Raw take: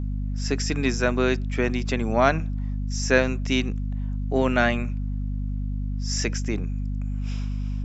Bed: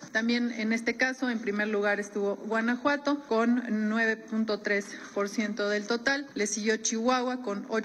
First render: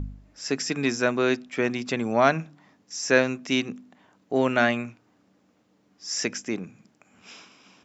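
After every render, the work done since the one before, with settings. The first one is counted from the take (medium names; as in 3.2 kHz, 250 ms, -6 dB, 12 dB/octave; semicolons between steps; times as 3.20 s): de-hum 50 Hz, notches 5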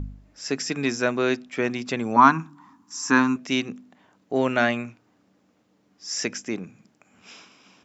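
2.16–3.36 s: FFT filter 180 Hz 0 dB, 270 Hz +9 dB, 580 Hz -19 dB, 980 Hz +15 dB, 2 kHz -4 dB, 5.2 kHz -2 dB, 7.8 kHz +3 dB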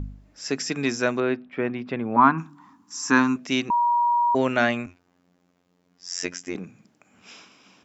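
1.20–2.38 s: distance through air 420 m; 3.70–4.35 s: bleep 955 Hz -17.5 dBFS; 4.86–6.55 s: robot voice 88.8 Hz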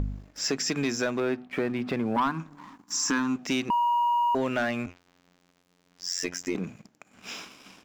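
compression 3:1, threshold -33 dBFS, peak gain reduction 16 dB; waveshaping leveller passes 2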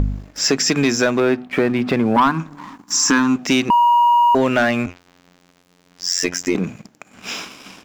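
trim +11 dB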